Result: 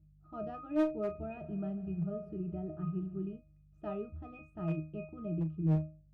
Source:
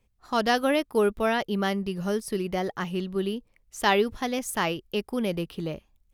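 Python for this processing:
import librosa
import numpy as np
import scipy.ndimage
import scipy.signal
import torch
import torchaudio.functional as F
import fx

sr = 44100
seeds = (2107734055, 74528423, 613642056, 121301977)

y = scipy.signal.sosfilt(scipy.signal.butter(4, 83.0, 'highpass', fs=sr, output='sos'), x)
y = fx.tilt_eq(y, sr, slope=-4.0)
y = fx.add_hum(y, sr, base_hz=50, snr_db=26)
y = fx.octave_resonator(y, sr, note='D#', decay_s=0.36)
y = fx.clip_asym(y, sr, top_db=-30.0, bottom_db=-22.0)
y = fx.doubler(y, sr, ms=37.0, db=-12.5)
y = fx.echo_heads(y, sr, ms=72, heads='first and second', feedback_pct=70, wet_db=-20, at=(1.08, 3.34))
y = y * 10.0 ** (2.0 / 20.0)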